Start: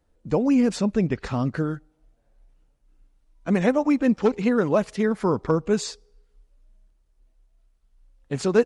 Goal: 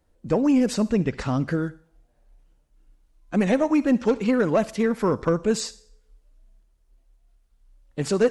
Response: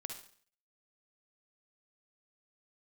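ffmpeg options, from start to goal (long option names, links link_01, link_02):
-filter_complex "[0:a]asetrate=45938,aresample=44100,asplit=2[link_01][link_02];[1:a]atrim=start_sample=2205,highshelf=frequency=3700:gain=10.5[link_03];[link_02][link_03]afir=irnorm=-1:irlink=0,volume=-13dB[link_04];[link_01][link_04]amix=inputs=2:normalize=0,asoftclip=type=tanh:threshold=-10dB"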